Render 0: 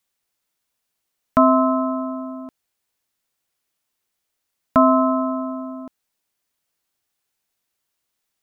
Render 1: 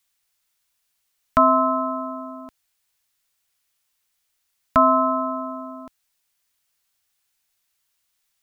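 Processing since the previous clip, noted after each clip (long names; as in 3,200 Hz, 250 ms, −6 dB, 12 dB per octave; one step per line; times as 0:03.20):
parametric band 310 Hz −11.5 dB 2.9 octaves
level +5 dB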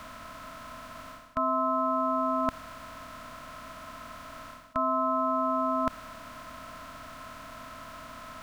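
compressor on every frequency bin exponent 0.4
reversed playback
downward compressor 10 to 1, threshold −25 dBFS, peak gain reduction 15.5 dB
reversed playback
level +1 dB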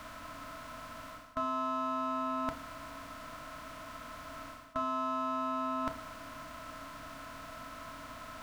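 in parallel at −3.5 dB: hard clipping −32 dBFS, distortion −6 dB
on the sum: feedback delay network reverb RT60 0.48 s, high-frequency decay 0.85×, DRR 5 dB
level −7.5 dB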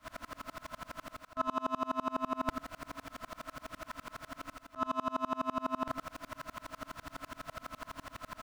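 single-tap delay 105 ms −9 dB
tremolo with a ramp in dB swelling 12 Hz, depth 32 dB
level +8 dB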